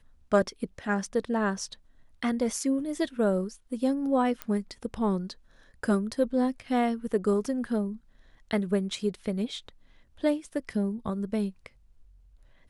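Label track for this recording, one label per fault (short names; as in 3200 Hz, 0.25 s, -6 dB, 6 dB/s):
4.420000	4.420000	pop -16 dBFS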